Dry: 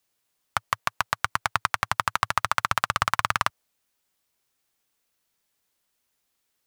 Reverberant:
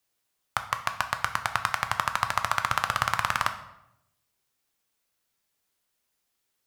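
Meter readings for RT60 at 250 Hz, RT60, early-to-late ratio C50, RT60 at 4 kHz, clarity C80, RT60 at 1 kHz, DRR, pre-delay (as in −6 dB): 1.0 s, 0.85 s, 11.0 dB, 0.60 s, 14.0 dB, 0.80 s, 7.0 dB, 9 ms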